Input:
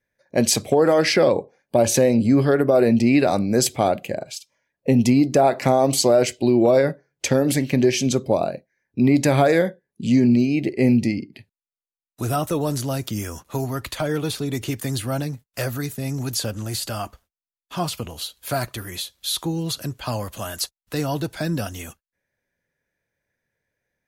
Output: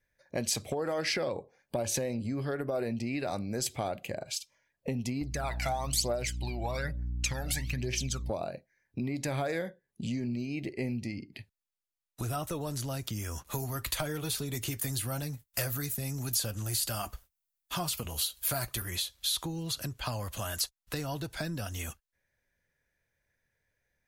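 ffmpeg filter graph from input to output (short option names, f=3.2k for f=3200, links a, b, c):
-filter_complex "[0:a]asettb=1/sr,asplit=3[a][b][c];[a]atrim=end=5.214[d];[b]atrim=start=5.21:end=8.3,asetpts=PTS-STARTPTS,afade=t=in:d=0.004:c=qsin,afade=t=out:st=3.086:d=0.004:c=qsin,equalizer=f=280:t=o:w=2.6:g=-9.5,aphaser=in_gain=1:out_gain=1:delay=1.5:decay=0.69:speed=1.1:type=triangular,aeval=exprs='val(0)+0.0282*(sin(2*PI*60*n/s)+sin(2*PI*2*60*n/s)/2+sin(2*PI*3*60*n/s)/3+sin(2*PI*4*60*n/s)/4+sin(2*PI*5*60*n/s)/5)':c=same[e];[c]atrim=start=8.296[f];[d][e]acrossfade=d=0.004:c1=hsin:c2=qsin[g];[g][f]acrossfade=d=0.004:c1=qsin:c2=hsin,asettb=1/sr,asplit=3[h][i][j];[h]atrim=end=13.474[k];[i]atrim=start=13.47:end=18.82,asetpts=PTS-STARTPTS,afade=t=in:d=0.004:c=qsin,afade=t=out:st=5.346:d=0.004:c=qsin,highshelf=f=8.9k:g=12,acontrast=38,flanger=delay=4.6:depth=2.1:regen=-69:speed=1.1:shape=triangular[l];[j]atrim=start=18.816[m];[k][l]acrossfade=d=0.004:c1=hsin:c2=qsin[n];[n][m]acrossfade=d=0.004:c1=qsin:c2=hsin,lowshelf=f=150:g=9.5,acompressor=threshold=-29dB:ratio=3,equalizer=f=210:w=0.37:g=-7.5"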